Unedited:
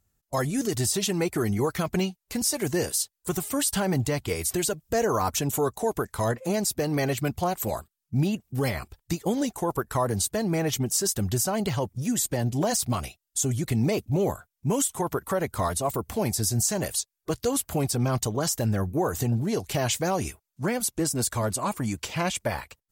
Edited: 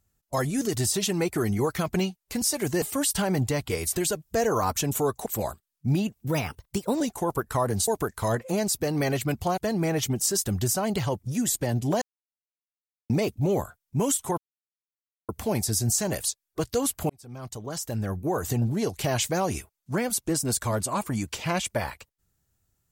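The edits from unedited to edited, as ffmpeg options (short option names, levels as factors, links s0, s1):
-filter_complex "[0:a]asplit=12[s0][s1][s2][s3][s4][s5][s6][s7][s8][s9][s10][s11];[s0]atrim=end=2.822[s12];[s1]atrim=start=3.398:end=5.842[s13];[s2]atrim=start=7.538:end=8.564[s14];[s3]atrim=start=8.56:end=9.41,asetpts=PTS-STARTPTS,asetrate=51597,aresample=44100,atrim=end_sample=32038,asetpts=PTS-STARTPTS[s15];[s4]atrim=start=9.406:end=10.282[s16];[s5]atrim=start=5.838:end=7.542[s17];[s6]atrim=start=10.278:end=12.72,asetpts=PTS-STARTPTS,afade=t=out:st=2.438:d=0.004:c=hsin[s18];[s7]atrim=start=12.72:end=13.8,asetpts=PTS-STARTPTS,volume=0[s19];[s8]atrim=start=13.8:end=15.08,asetpts=PTS-STARTPTS,afade=t=in:d=0.004:c=hsin,afade=t=out:st=1.276:d=0.004:c=hsin[s20];[s9]atrim=start=15.08:end=15.99,asetpts=PTS-STARTPTS,volume=0[s21];[s10]atrim=start=15.99:end=17.8,asetpts=PTS-STARTPTS,afade=t=in:d=0.004:c=hsin,afade=t=out:st=1.806:d=0.004:c=hsin[s22];[s11]atrim=start=17.8,asetpts=PTS-STARTPTS,afade=t=in:d=1.47[s23];[s12][s13]acrossfade=d=0.004:c1=hsin:c2=hsin[s24];[s24][s14]acrossfade=d=0.004:c1=hsin:c2=hsin[s25];[s25][s15]acrossfade=d=0.004:c1=hsin:c2=hsin[s26];[s26][s16]acrossfade=d=0.004:c1=hsin:c2=hsin[s27];[s27][s17]acrossfade=d=0.004:c1=hsin:c2=hsin[s28];[s18][s19][s20][s21][s22][s23]concat=n=6:v=0:a=1[s29];[s28][s29]acrossfade=d=0.004:c1=hsin:c2=hsin"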